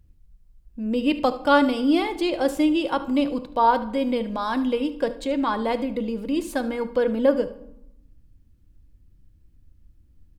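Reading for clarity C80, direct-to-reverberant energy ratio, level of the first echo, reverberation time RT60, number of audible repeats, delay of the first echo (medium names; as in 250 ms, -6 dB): 18.0 dB, 10.5 dB, -16.5 dB, 0.85 s, 1, 74 ms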